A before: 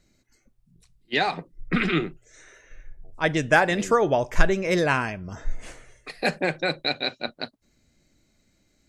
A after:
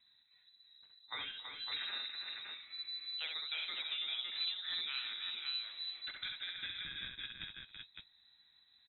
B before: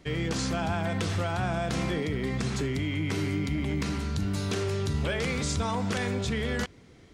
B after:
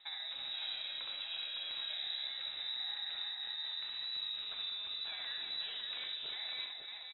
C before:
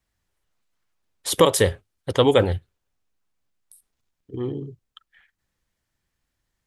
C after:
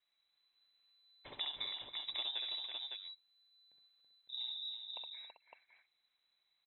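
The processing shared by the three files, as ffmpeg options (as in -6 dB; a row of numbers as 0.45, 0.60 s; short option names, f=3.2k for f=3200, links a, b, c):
-filter_complex "[0:a]equalizer=f=1k:w=1.9:g=-5.5,acompressor=threshold=-38dB:ratio=4,asplit=2[a][b];[b]aecho=0:1:66|275|329|390|558:0.631|0.112|0.473|0.266|0.596[c];[a][c]amix=inputs=2:normalize=0,lowpass=f=3.4k:t=q:w=0.5098,lowpass=f=3.4k:t=q:w=0.6013,lowpass=f=3.4k:t=q:w=0.9,lowpass=f=3.4k:t=q:w=2.563,afreqshift=-4000,volume=-5.5dB"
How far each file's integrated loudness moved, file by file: -15.5, -9.0, -19.5 LU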